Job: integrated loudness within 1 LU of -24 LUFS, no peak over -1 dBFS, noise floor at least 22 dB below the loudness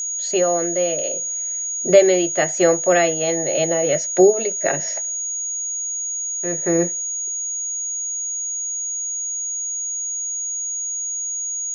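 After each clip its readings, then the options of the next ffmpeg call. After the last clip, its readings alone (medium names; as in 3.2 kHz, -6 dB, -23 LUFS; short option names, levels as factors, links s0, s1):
steady tone 6.7 kHz; tone level -23 dBFS; loudness -20.0 LUFS; peak level -1.0 dBFS; loudness target -24.0 LUFS
-> -af "bandreject=f=6700:w=30"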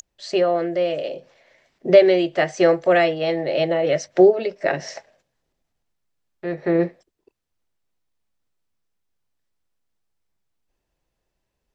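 steady tone not found; loudness -19.5 LUFS; peak level -1.5 dBFS; loudness target -24.0 LUFS
-> -af "volume=0.596"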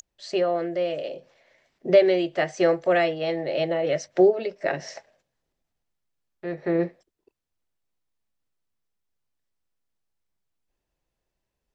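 loudness -24.0 LUFS; peak level -6.0 dBFS; noise floor -83 dBFS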